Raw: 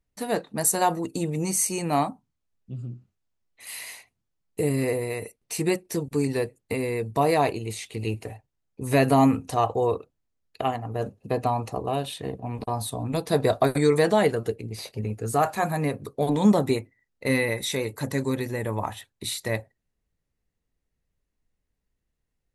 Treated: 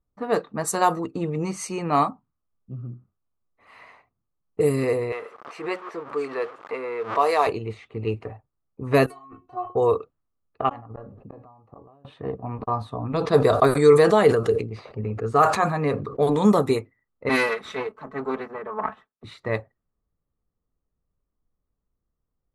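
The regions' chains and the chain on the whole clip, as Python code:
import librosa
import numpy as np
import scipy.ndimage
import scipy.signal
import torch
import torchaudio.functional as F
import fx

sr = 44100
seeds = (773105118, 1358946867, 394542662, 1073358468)

y = fx.chain(x, sr, fx.zero_step(step_db=-34.5),
    fx.highpass(hz=570.0, slope=12),
    fx.pre_swell(db_per_s=130.0), at=(5.12, 7.47))
y = fx.chain(y, sr, fx.over_compress(threshold_db=-23.0, ratio=-0.5),
    fx.stiff_resonator(f0_hz=360.0, decay_s=0.21, stiffness=0.002), at=(9.06, 9.75))
y = fx.chain(y, sr, fx.gate_flip(shuts_db=-23.0, range_db=-34),
    fx.comb_fb(f0_hz=280.0, decay_s=0.23, harmonics='all', damping=0.0, mix_pct=40),
    fx.sustainer(db_per_s=47.0), at=(10.69, 12.05))
y = fx.chain(y, sr, fx.lowpass(hz=10000.0, slope=12),
    fx.sustainer(db_per_s=62.0), at=(12.99, 16.33))
y = fx.chain(y, sr, fx.lower_of_two(delay_ms=4.6),
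    fx.highpass(hz=270.0, slope=6),
    fx.band_widen(depth_pct=70), at=(17.29, 19.24))
y = fx.dynamic_eq(y, sr, hz=440.0, q=5.0, threshold_db=-39.0, ratio=4.0, max_db=7)
y = fx.env_lowpass(y, sr, base_hz=890.0, full_db=-15.5)
y = fx.peak_eq(y, sr, hz=1200.0, db=12.0, octaves=0.39)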